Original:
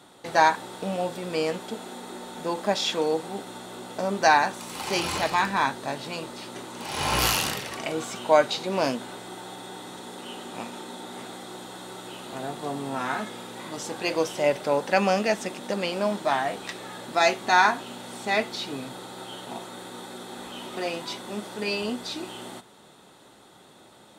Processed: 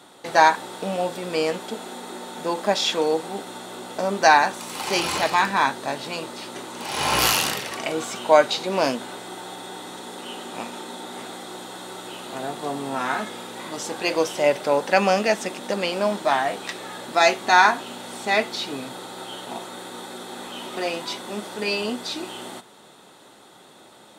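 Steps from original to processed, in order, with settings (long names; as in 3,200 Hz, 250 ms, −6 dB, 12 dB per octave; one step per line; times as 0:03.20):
low-shelf EQ 120 Hz −11.5 dB
level +4 dB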